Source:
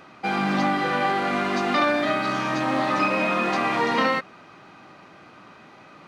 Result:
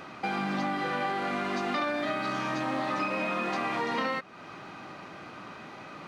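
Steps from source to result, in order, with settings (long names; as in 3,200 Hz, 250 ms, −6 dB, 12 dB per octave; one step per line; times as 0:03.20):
downward compressor 2.5 to 1, threshold −37 dBFS, peak gain reduction 13 dB
level +3.5 dB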